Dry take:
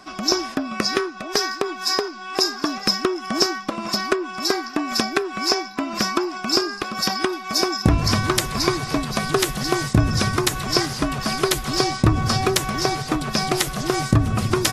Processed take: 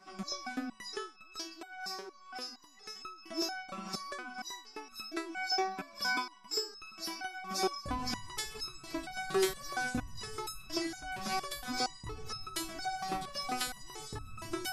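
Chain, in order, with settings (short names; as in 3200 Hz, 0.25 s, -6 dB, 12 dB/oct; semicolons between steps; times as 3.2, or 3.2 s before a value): 1.38–2.96 compressor, threshold -26 dBFS, peak gain reduction 11.5 dB; 5.76–6.68 ripple EQ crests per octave 1.7, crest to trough 8 dB; stepped resonator 4.3 Hz 190–1300 Hz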